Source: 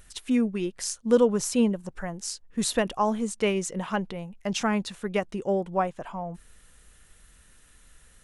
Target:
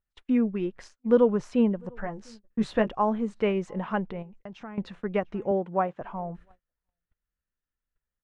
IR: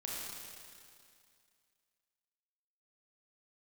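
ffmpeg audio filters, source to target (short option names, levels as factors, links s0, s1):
-filter_complex "[0:a]lowpass=2000,asplit=2[s0][s1];[s1]adelay=699.7,volume=0.0398,highshelf=f=4000:g=-15.7[s2];[s0][s2]amix=inputs=2:normalize=0,agate=range=0.0224:threshold=0.00501:ratio=16:detection=peak,asettb=1/sr,asplit=3[s3][s4][s5];[s3]atrim=end=1.964[s6];[s4]atrim=start=1.96:end=2.89,asetpts=PTS-STARTPTS,afade=t=in:d=0.004:c=qsin,afade=t=out:st=0.926:d=0.004:c=qsin,asplit=2[s7][s8];[s8]adelay=14,volume=0.473[s9];[s7][s9]amix=inputs=2:normalize=0,atrim=end_sample=41013[s10];[s5]atrim=start=2.886[s11];[s6][s10]acrossfade=d=0.004:c1=hsin:c2=qsin[s12];[s12][s11]acrossfade=d=0.004:c1=qsin:c2=hsin,asettb=1/sr,asplit=3[s13][s14][s15];[s13]atrim=end=4.224[s16];[s14]atrim=start=4.22:end=4.78,asetpts=PTS-STARTPTS,afade=t=in:d=0.004:c=qsin,afade=t=out:st=0.556:d=0.004:c=qsin,acompressor=threshold=0.00631:ratio=3[s17];[s15]atrim=start=4.776[s18];[s16][s17]acrossfade=d=0.004:c1=hsin:c2=qsin[s19];[s19][s18]acrossfade=d=0.004:c1=qsin:c2=hsin,asettb=1/sr,asplit=3[s20][s21][s22];[s20]atrim=end=5.514[s23];[s21]atrim=start=5.51:end=6.01,asetpts=PTS-STARTPTS,afade=t=in:d=0.004:c=qsin,afade=t=out:st=0.496:d=0.004:c=qsin,highpass=140[s24];[s22]atrim=start=6.006[s25];[s23][s24]acrossfade=d=0.004:c1=hsin:c2=qsin[s26];[s26][s25]acrossfade=d=0.004:c1=qsin:c2=hsin"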